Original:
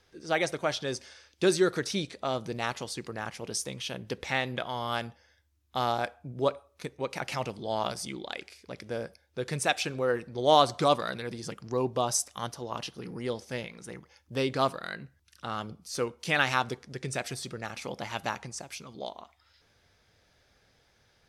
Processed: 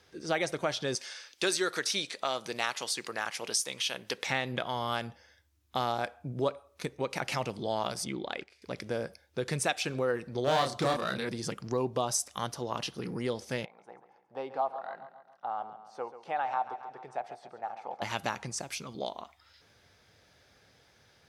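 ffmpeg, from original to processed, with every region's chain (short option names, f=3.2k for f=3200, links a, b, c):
-filter_complex "[0:a]asettb=1/sr,asplit=3[a][b][c];[a]atrim=end=0.954[d];[b]atrim=start=0.95:end=4.27,asetpts=PTS-STARTPTS,afade=t=in:d=0.004:c=qsin,afade=t=out:st=3.316:d=0.004:c=qsin,highpass=f=1.2k:p=1,acontrast=32[e];[c]atrim=start=4.266[f];[d][e]acrossfade=d=0.004:c1=hsin:c2=qsin[g];[g][f]acrossfade=d=0.004:c1=qsin:c2=hsin,asettb=1/sr,asplit=3[h][i][j];[h]atrim=end=8.044[k];[i]atrim=start=8.04:end=8.62,asetpts=PTS-STARTPTS,afade=t=in:d=0.004:c=qsin,afade=t=out:st=0.576:d=0.004:c=qsin,agate=range=-9dB:threshold=-48dB:ratio=16:release=100:detection=peak,lowpass=f=2.3k:p=1[l];[j]atrim=start=8.616[m];[k][l]acrossfade=d=0.004:c1=hsin:c2=qsin[n];[n][m]acrossfade=d=0.004:c1=qsin:c2=hsin,asettb=1/sr,asplit=3[o][p][q];[o]atrim=end=10.444[r];[p]atrim=start=10.44:end=11.29,asetpts=PTS-STARTPTS,afade=t=in:d=0.004:c=qsin,afade=t=out:st=0.846:d=0.004:c=qsin,aeval=exprs='clip(val(0),-1,0.0596)':c=same,asplit=2[s][t];[t]adelay=30,volume=-3dB[u];[s][u]amix=inputs=2:normalize=0,atrim=end_sample=37485[v];[q]atrim=start=11.286[w];[r][v]acrossfade=d=0.004:c1=hsin:c2=qsin[x];[x][w]acrossfade=d=0.004:c1=qsin:c2=hsin,asettb=1/sr,asplit=3[y][z][aa];[y]atrim=end=13.654[ab];[z]atrim=start=13.65:end=18.02,asetpts=PTS-STARTPTS,afade=t=in:d=0.004:c=qsin,afade=t=out:st=4.366:d=0.004:c=qsin,acontrast=52,bandpass=f=790:t=q:w=6.5,aecho=1:1:137|274|411|548|685:0.224|0.114|0.0582|0.0297|0.0151,atrim=end_sample=192717[ac];[aa]atrim=start=18.016[ad];[ab][ac]acrossfade=d=0.004:c1=hsin:c2=qsin[ae];[ae][ad]acrossfade=d=0.004:c1=qsin:c2=hsin,highpass=75,acompressor=threshold=-34dB:ratio=2,volume=3.5dB"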